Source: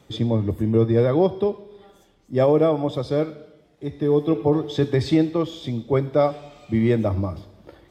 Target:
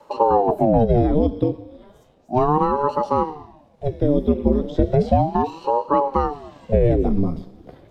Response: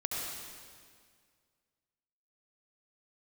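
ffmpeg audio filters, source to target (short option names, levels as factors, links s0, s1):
-filter_complex "[0:a]acrossover=split=490|1700[s0][s1][s2];[s0]acompressor=threshold=0.112:ratio=4[s3];[s1]acompressor=threshold=0.0178:ratio=4[s4];[s2]acompressor=threshold=0.00631:ratio=4[s5];[s3][s4][s5]amix=inputs=3:normalize=0,equalizer=f=160:t=o:w=2.6:g=11.5,aeval=exprs='val(0)*sin(2*PI*400*n/s+400*0.8/0.34*sin(2*PI*0.34*n/s))':c=same"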